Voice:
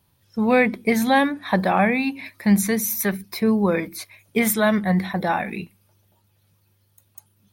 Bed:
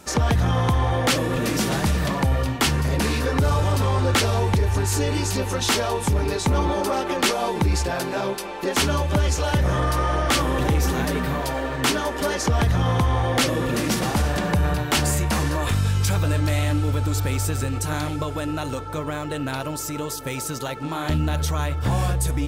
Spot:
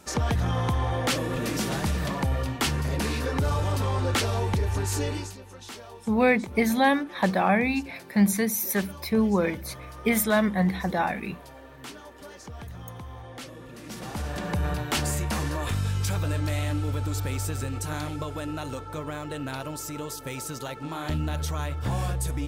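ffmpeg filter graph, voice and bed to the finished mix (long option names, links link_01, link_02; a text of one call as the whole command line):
ffmpeg -i stem1.wav -i stem2.wav -filter_complex "[0:a]adelay=5700,volume=-3.5dB[link_01];[1:a]volume=9dB,afade=type=out:start_time=5.06:duration=0.3:silence=0.177828,afade=type=in:start_time=13.8:duration=0.87:silence=0.188365[link_02];[link_01][link_02]amix=inputs=2:normalize=0" out.wav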